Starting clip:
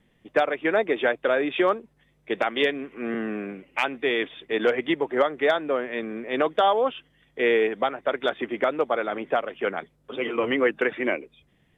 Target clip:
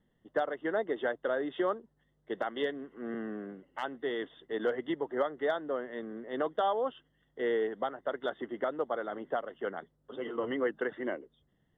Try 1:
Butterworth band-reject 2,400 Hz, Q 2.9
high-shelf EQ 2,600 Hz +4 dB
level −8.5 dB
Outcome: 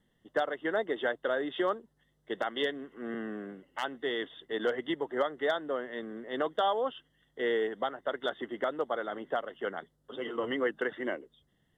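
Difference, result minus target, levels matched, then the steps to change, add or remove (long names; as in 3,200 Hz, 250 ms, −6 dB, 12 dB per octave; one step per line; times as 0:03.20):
4,000 Hz band +6.0 dB
change: high-shelf EQ 2,600 Hz −7.5 dB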